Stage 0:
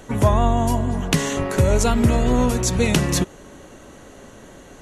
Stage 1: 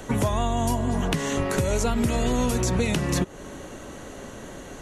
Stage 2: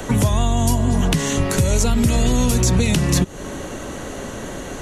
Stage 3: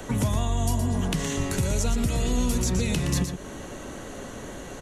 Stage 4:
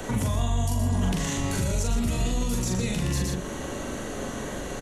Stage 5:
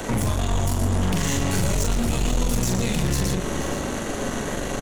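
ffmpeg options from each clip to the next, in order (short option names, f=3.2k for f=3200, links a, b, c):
-filter_complex "[0:a]acrossover=split=210|2500[a][b][c];[a]acompressor=threshold=-28dB:ratio=4[d];[b]acompressor=threshold=-28dB:ratio=4[e];[c]acompressor=threshold=-35dB:ratio=4[f];[d][e][f]amix=inputs=3:normalize=0,asplit=2[g][h];[h]alimiter=limit=-17.5dB:level=0:latency=1:release=305,volume=2dB[i];[g][i]amix=inputs=2:normalize=0,volume=-3.5dB"
-filter_complex "[0:a]acrossover=split=220|3000[a][b][c];[b]acompressor=threshold=-38dB:ratio=2[d];[a][d][c]amix=inputs=3:normalize=0,asplit=2[e][f];[f]asoftclip=type=tanh:threshold=-24.5dB,volume=-10.5dB[g];[e][g]amix=inputs=2:normalize=0,volume=7.5dB"
-af "aecho=1:1:118:0.422,volume=-8.5dB"
-filter_complex "[0:a]alimiter=limit=-23dB:level=0:latency=1:release=54,asplit=2[a][b];[b]adelay=42,volume=-3dB[c];[a][c]amix=inputs=2:normalize=0,volume=3dB"
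-af "aeval=exprs='0.178*(cos(1*acos(clip(val(0)/0.178,-1,1)))-cos(1*PI/2))+0.0355*(cos(5*acos(clip(val(0)/0.178,-1,1)))-cos(5*PI/2))+0.0282*(cos(8*acos(clip(val(0)/0.178,-1,1)))-cos(8*PI/2))':c=same,aecho=1:1:479:0.237"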